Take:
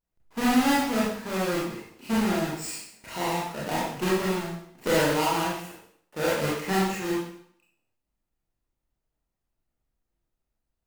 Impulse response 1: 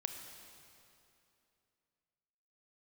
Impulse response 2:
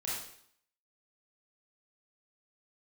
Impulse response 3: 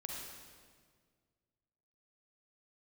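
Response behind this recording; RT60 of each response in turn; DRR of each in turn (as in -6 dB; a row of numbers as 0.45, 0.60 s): 2; 2.8, 0.65, 1.8 s; 5.0, -7.5, -2.0 dB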